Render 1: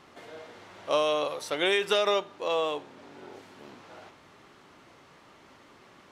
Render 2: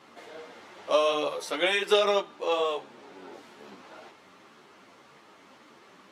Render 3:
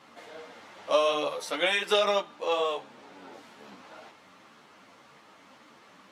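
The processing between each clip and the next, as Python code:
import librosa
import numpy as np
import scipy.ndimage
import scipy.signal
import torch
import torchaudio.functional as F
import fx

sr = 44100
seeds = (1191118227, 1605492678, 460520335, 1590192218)

y1 = scipy.signal.sosfilt(scipy.signal.butter(2, 160.0, 'highpass', fs=sr, output='sos'), x)
y1 = fx.ensemble(y1, sr)
y1 = y1 * 10.0 ** (4.0 / 20.0)
y2 = fx.peak_eq(y1, sr, hz=380.0, db=-10.0, octaves=0.24)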